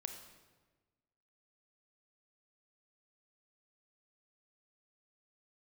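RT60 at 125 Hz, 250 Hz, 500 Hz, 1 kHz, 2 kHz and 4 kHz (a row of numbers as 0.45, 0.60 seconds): 1.5, 1.5, 1.4, 1.2, 1.1, 0.95 seconds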